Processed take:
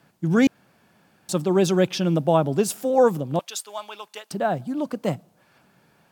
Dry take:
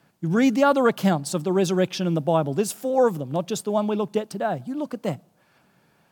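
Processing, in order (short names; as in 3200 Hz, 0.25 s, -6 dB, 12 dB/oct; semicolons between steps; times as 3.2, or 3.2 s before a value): 0.47–1.29 room tone; 3.39–4.31 HPF 1400 Hz 12 dB/oct; gain +2 dB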